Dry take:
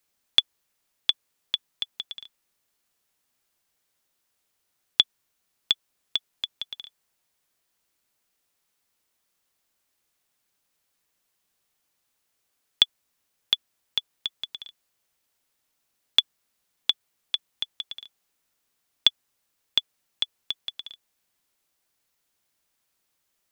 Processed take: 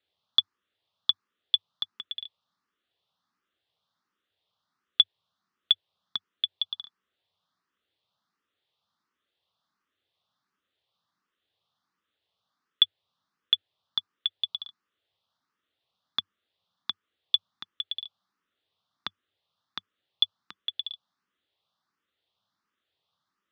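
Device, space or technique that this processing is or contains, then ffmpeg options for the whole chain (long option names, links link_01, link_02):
barber-pole phaser into a guitar amplifier: -filter_complex "[0:a]asplit=2[link_01][link_02];[link_02]afreqshift=1.4[link_03];[link_01][link_03]amix=inputs=2:normalize=1,asoftclip=type=tanh:threshold=-13.5dB,highpass=95,equalizer=frequency=96:width_type=q:width=4:gain=7,equalizer=frequency=190:width_type=q:width=4:gain=4,equalizer=frequency=1200:width_type=q:width=4:gain=8,equalizer=frequency=2300:width_type=q:width=4:gain=-6,equalizer=frequency=3500:width_type=q:width=4:gain=7,lowpass=frequency=4400:width=0.5412,lowpass=frequency=4400:width=1.3066"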